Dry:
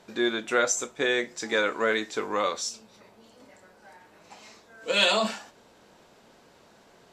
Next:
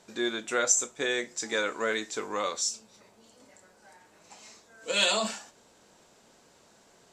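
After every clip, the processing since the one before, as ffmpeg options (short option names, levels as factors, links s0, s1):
-af "equalizer=f=7500:w=1.1:g=10,volume=0.596"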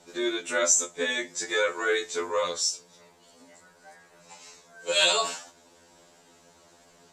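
-af "afftfilt=real='re*2*eq(mod(b,4),0)':imag='im*2*eq(mod(b,4),0)':win_size=2048:overlap=0.75,volume=1.78"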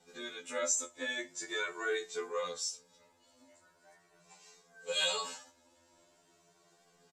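-filter_complex "[0:a]asplit=2[s0][s1];[s1]adelay=2.1,afreqshift=0.42[s2];[s0][s2]amix=inputs=2:normalize=1,volume=0.447"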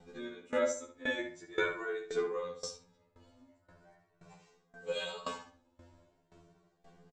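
-filter_complex "[0:a]aemphasis=mode=reproduction:type=riaa,asplit=2[s0][s1];[s1]adelay=67,lowpass=f=3500:p=1,volume=0.631,asplit=2[s2][s3];[s3]adelay=67,lowpass=f=3500:p=1,volume=0.4,asplit=2[s4][s5];[s5]adelay=67,lowpass=f=3500:p=1,volume=0.4,asplit=2[s6][s7];[s7]adelay=67,lowpass=f=3500:p=1,volume=0.4,asplit=2[s8][s9];[s9]adelay=67,lowpass=f=3500:p=1,volume=0.4[s10];[s0][s2][s4][s6][s8][s10]amix=inputs=6:normalize=0,aeval=exprs='val(0)*pow(10,-19*if(lt(mod(1.9*n/s,1),2*abs(1.9)/1000),1-mod(1.9*n/s,1)/(2*abs(1.9)/1000),(mod(1.9*n/s,1)-2*abs(1.9)/1000)/(1-2*abs(1.9)/1000))/20)':c=same,volume=1.88"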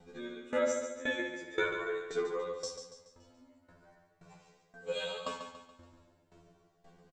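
-af "aecho=1:1:142|284|426|568|710:0.398|0.171|0.0736|0.0317|0.0136"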